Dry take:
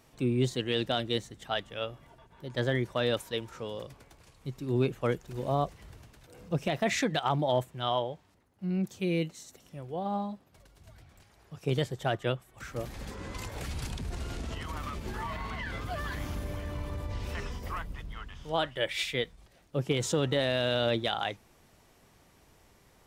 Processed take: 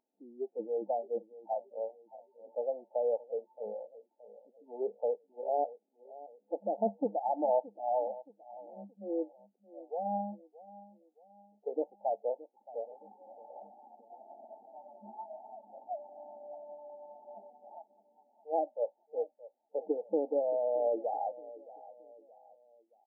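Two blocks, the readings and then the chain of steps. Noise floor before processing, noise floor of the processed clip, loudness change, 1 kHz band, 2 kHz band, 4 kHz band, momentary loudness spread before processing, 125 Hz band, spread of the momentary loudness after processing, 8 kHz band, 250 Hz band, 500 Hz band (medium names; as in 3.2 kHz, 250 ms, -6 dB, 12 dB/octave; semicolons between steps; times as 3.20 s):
-62 dBFS, -77 dBFS, -3.0 dB, -1.5 dB, under -40 dB, under -40 dB, 13 LU, under -25 dB, 21 LU, under -35 dB, -9.5 dB, -1.0 dB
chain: FFT band-pass 200–900 Hz; spectral noise reduction 24 dB; on a send: feedback delay 622 ms, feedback 41%, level -18 dB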